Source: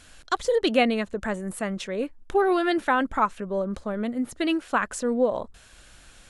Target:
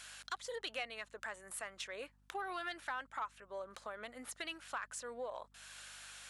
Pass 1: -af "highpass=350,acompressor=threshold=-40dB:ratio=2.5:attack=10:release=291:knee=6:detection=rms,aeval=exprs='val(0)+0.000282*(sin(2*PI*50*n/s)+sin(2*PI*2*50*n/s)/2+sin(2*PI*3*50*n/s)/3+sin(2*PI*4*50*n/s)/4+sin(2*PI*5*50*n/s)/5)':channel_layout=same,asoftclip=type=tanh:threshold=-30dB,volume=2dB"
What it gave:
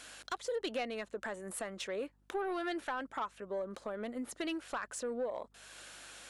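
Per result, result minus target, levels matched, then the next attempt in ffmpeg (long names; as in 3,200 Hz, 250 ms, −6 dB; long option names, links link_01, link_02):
250 Hz band +10.0 dB; downward compressor: peak gain reduction −2 dB
-af "highpass=970,acompressor=threshold=-40dB:ratio=2.5:attack=10:release=291:knee=6:detection=rms,aeval=exprs='val(0)+0.000282*(sin(2*PI*50*n/s)+sin(2*PI*2*50*n/s)/2+sin(2*PI*3*50*n/s)/3+sin(2*PI*4*50*n/s)/4+sin(2*PI*5*50*n/s)/5)':channel_layout=same,asoftclip=type=tanh:threshold=-30dB,volume=2dB"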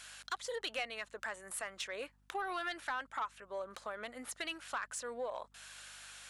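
downward compressor: peak gain reduction −3.5 dB
-af "highpass=970,acompressor=threshold=-46dB:ratio=2.5:attack=10:release=291:knee=6:detection=rms,aeval=exprs='val(0)+0.000282*(sin(2*PI*50*n/s)+sin(2*PI*2*50*n/s)/2+sin(2*PI*3*50*n/s)/3+sin(2*PI*4*50*n/s)/4+sin(2*PI*5*50*n/s)/5)':channel_layout=same,asoftclip=type=tanh:threshold=-30dB,volume=2dB"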